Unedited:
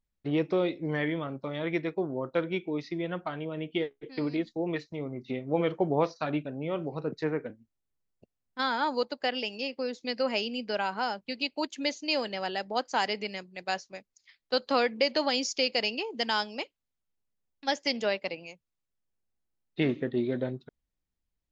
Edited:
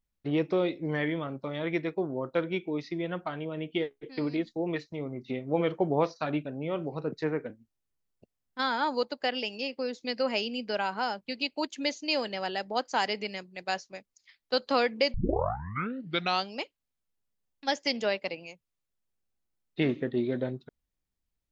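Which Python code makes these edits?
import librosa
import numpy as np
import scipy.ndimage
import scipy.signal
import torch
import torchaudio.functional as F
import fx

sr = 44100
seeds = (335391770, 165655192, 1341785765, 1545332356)

y = fx.edit(x, sr, fx.tape_start(start_s=15.14, length_s=1.4), tone=tone)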